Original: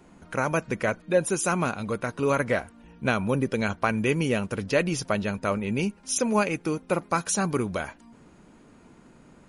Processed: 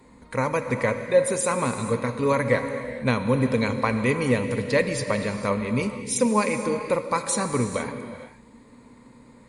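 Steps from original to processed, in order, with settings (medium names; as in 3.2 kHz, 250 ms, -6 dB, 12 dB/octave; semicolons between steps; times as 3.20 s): rippled EQ curve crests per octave 0.98, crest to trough 11 dB; reverberation, pre-delay 3 ms, DRR 7 dB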